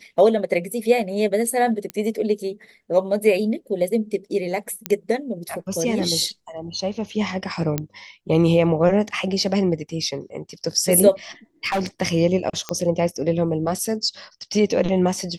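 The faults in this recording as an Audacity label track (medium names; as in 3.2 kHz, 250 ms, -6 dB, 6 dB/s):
1.900000	1.900000	pop -13 dBFS
4.860000	4.860000	pop -7 dBFS
7.780000	7.780000	pop -8 dBFS
11.640000	11.870000	clipped -18.5 dBFS
12.690000	12.690000	pop -10 dBFS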